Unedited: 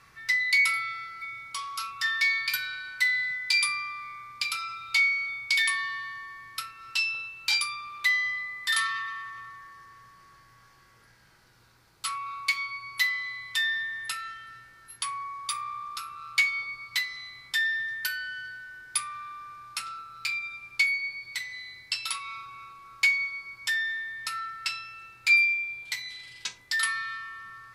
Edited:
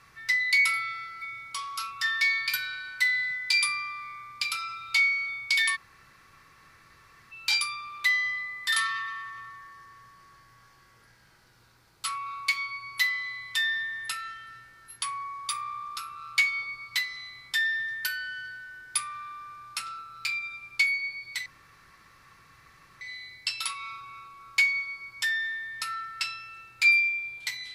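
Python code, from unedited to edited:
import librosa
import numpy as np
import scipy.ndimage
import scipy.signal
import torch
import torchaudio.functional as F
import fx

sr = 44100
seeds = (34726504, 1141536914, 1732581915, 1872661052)

y = fx.edit(x, sr, fx.room_tone_fill(start_s=5.76, length_s=1.56, crossfade_s=0.02),
    fx.insert_room_tone(at_s=21.46, length_s=1.55), tone=tone)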